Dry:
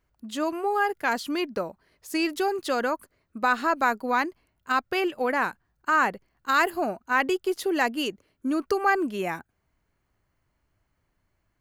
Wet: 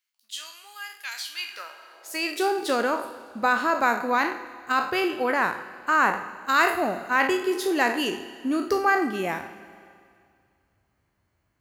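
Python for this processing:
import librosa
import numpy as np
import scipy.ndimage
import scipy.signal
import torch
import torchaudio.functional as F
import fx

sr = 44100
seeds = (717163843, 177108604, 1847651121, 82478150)

y = fx.spec_trails(x, sr, decay_s=0.43)
y = fx.rev_schroeder(y, sr, rt60_s=2.2, comb_ms=26, drr_db=12.5)
y = fx.filter_sweep_highpass(y, sr, from_hz=3200.0, to_hz=68.0, start_s=1.3, end_s=3.35, q=1.1)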